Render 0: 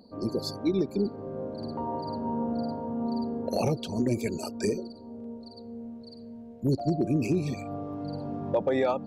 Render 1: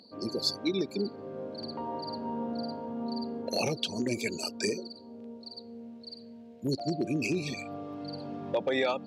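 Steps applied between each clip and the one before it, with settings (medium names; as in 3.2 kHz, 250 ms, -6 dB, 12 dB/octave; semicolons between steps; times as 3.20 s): frequency weighting D; trim -3 dB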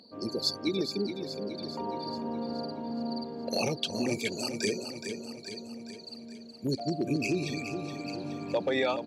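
feedback delay 420 ms, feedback 55%, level -8 dB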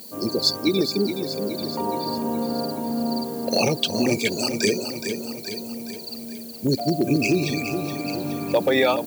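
added noise violet -51 dBFS; trim +9 dB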